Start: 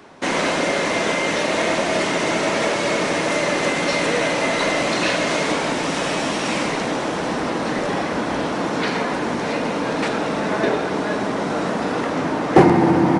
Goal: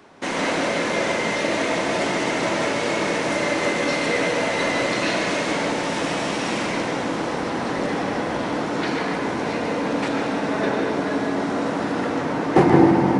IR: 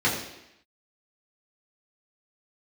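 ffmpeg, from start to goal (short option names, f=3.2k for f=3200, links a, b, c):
-filter_complex "[0:a]asplit=2[a][b];[1:a]atrim=start_sample=2205,adelay=137[c];[b][c]afir=irnorm=-1:irlink=0,volume=-16.5dB[d];[a][d]amix=inputs=2:normalize=0,volume=-4.5dB"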